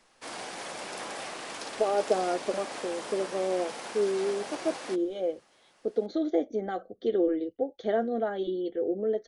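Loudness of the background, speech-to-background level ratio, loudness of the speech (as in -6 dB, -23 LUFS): -38.5 LUFS, 8.0 dB, -30.5 LUFS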